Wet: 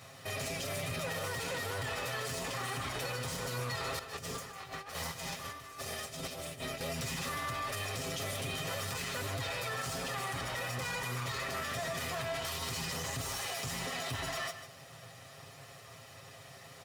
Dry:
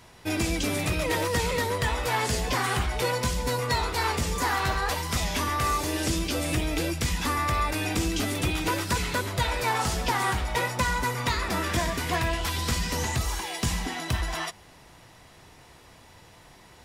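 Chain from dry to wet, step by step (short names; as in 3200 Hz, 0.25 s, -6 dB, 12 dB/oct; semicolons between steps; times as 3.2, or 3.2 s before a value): minimum comb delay 1.6 ms; HPF 79 Hz 24 dB/oct; comb 7.4 ms, depth 72%; 3.99–6.81 negative-ratio compressor -38 dBFS, ratio -0.5; limiter -29 dBFS, peak gain reduction 17 dB; echo 0.152 s -11.5 dB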